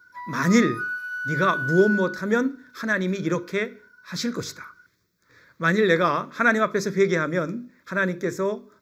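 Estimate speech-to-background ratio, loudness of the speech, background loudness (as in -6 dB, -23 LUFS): 5.5 dB, -23.5 LUFS, -29.0 LUFS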